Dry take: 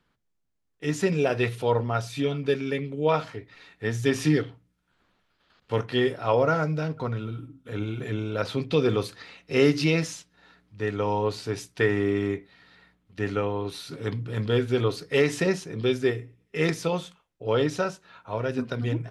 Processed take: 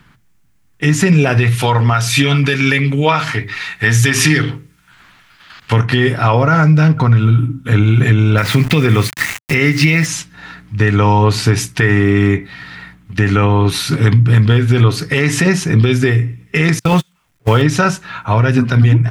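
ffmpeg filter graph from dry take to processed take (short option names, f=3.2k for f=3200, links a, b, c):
-filter_complex "[0:a]asettb=1/sr,asplit=3[a][b][c];[a]atrim=end=1.554[d];[b]atrim=start=1.55:end=5.73,asetpts=PTS-STARTPTS,afade=t=in:d=0.004:c=qsin,afade=t=out:st=4.176:d=0.004:c=qsin,tiltshelf=f=800:g=-5,bandreject=f=50:t=h:w=6,bandreject=f=100:t=h:w=6,bandreject=f=150:t=h:w=6,bandreject=f=200:t=h:w=6,bandreject=f=250:t=h:w=6,bandreject=f=300:t=h:w=6,bandreject=f=350:t=h:w=6,bandreject=f=400:t=h:w=6,bandreject=f=450:t=h:w=6,bandreject=f=500:t=h:w=6[e];[c]atrim=start=5.726[f];[d][e]acrossfade=d=0.004:c1=hsin:c2=qsin[g];[g][f]acrossfade=d=0.004:c1=qsin:c2=hsin,asettb=1/sr,asplit=3[h][i][j];[h]atrim=end=8.384[k];[i]atrim=start=8.38:end=10.06,asetpts=PTS-STARTPTS,afade=t=in:d=0.004:c=qsin,afade=t=out:st=1.676:d=0.004:c=qsin,equalizer=f=2k:w=3.4:g=9.5,aeval=exprs='val(0)*gte(abs(val(0)),0.0112)':c=same[l];[j]atrim=start=10.056[m];[k][l]acrossfade=d=0.004:c1=hsin:c2=qsin[n];[n][m]acrossfade=d=0.004:c1=qsin:c2=hsin,asettb=1/sr,asplit=3[o][p][q];[o]atrim=end=16.794[r];[p]atrim=start=16.79:end=17.62,asetpts=PTS-STARTPTS,afade=t=in:d=0.004:c=qsin,afade=t=out:st=0.826:d=0.004:c=qsin,aeval=exprs='val(0)+0.5*0.0133*sgn(val(0))':c=same,agate=range=-40dB:threshold=-30dB:ratio=16:release=100:detection=peak[s];[q]atrim=start=17.616[t];[r][s]acrossfade=d=0.004:c1=hsin:c2=qsin[u];[u][t]acrossfade=d=0.004:c1=qsin:c2=hsin,equalizer=f=125:t=o:w=1:g=6,equalizer=f=500:t=o:w=1:g=-10,equalizer=f=2k:t=o:w=1:g=3,equalizer=f=4k:t=o:w=1:g=-4,acompressor=threshold=-29dB:ratio=6,alimiter=level_in=23.5dB:limit=-1dB:release=50:level=0:latency=1,volume=-1dB"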